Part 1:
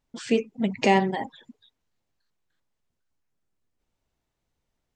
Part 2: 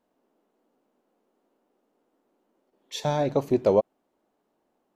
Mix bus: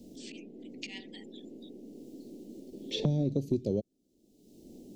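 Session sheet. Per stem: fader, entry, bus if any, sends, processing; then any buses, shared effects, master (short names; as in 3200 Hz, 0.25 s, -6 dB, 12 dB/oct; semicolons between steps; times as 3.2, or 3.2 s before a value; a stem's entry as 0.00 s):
-19.0 dB, 0.00 s, no send, Bessel high-pass 2000 Hz, order 8; high shelf 5100 Hz +11.5 dB; auto swell 0.106 s
-4.5 dB, 0.00 s, no send, high shelf 7200 Hz -9 dB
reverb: off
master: Chebyshev band-stop 310–4900 Hz, order 2; low shelf 310 Hz +6 dB; three-band squash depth 100%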